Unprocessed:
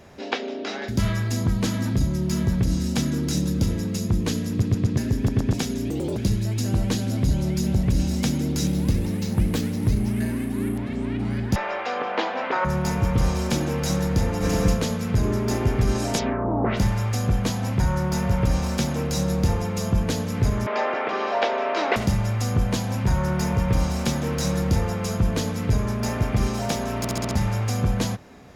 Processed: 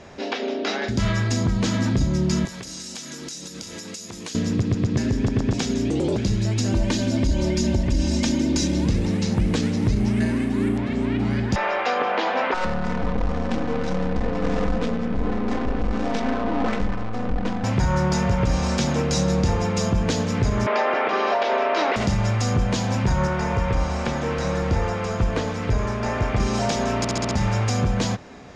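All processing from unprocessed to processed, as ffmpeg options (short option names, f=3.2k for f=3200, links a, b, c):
-filter_complex "[0:a]asettb=1/sr,asplit=3[a][b][c];[a]atrim=end=2.454[d];[b]atrim=start=2.45:end=4.35,asetpts=PTS-STARTPTS,afade=t=in:d=0.004:c=qsin,afade=t=out:st=1.896:d=0.004:c=qsin,highpass=f=930:p=1,aemphasis=mode=production:type=50fm,acompressor=threshold=-34dB:ratio=12:attack=3.2:release=140:knee=1:detection=peak[e];[c]atrim=start=4.346[f];[d][e]acrossfade=d=0.004:c1=hsin:c2=qsin[g];[g][f]acrossfade=d=0.004:c1=qsin:c2=hsin,asettb=1/sr,asplit=3[h][i][j];[h]atrim=end=6.724[k];[i]atrim=start=6.72:end=8.86,asetpts=PTS-STARTPTS,afade=t=in:d=0.004:c=qsin,afade=t=out:st=2.136:d=0.004:c=qsin,bandreject=f=1.3k:w=9.4,aecho=1:1:3.3:0.64,atrim=end_sample=94374[l];[j]atrim=start=8.856[m];[k][l]acrossfade=d=0.004:c1=hsin:c2=qsin[n];[n][m]acrossfade=d=0.004:c1=qsin:c2=hsin,asettb=1/sr,asplit=3[o][p][q];[o]atrim=end=12.544[r];[p]atrim=start=12.54:end=17.64,asetpts=PTS-STARTPTS,afade=t=in:d=0.004:c=qsin,afade=t=out:st=5.096:d=0.004:c=qsin,aeval=exprs='(tanh(20*val(0)+0.65)-tanh(0.65))/20':c=same,aecho=1:1:4:0.73,atrim=end_sample=224910,adynamicsmooth=sensitivity=4:basefreq=610[s];[q]atrim=start=17.636[t];[r][s]acrossfade=d=0.004:c1=hsin:c2=qsin[u];[u][t]acrossfade=d=0.004:c1=qsin:c2=hsin,asettb=1/sr,asplit=3[v][w][x];[v]atrim=end=23.274[y];[w]atrim=start=23.27:end=26.4,asetpts=PTS-STARTPTS,afade=t=in:d=0.004:c=qsin,afade=t=out:st=3.126:d=0.004:c=qsin,acrossover=split=2600[z][aa];[aa]acompressor=threshold=-45dB:ratio=4:attack=1:release=60[ab];[z][ab]amix=inputs=2:normalize=0,equalizer=f=180:t=o:w=1.7:g=-6.5[ac];[x]atrim=start=26.396[ad];[y][ac]acrossfade=d=0.004:c1=hsin:c2=qsin[ae];[ae][ad]acrossfade=d=0.004:c1=qsin:c2=hsin,lowpass=f=7.6k:w=0.5412,lowpass=f=7.6k:w=1.3066,equalizer=f=82:t=o:w=2.8:g=-3.5,alimiter=limit=-17.5dB:level=0:latency=1:release=100,volume=5.5dB"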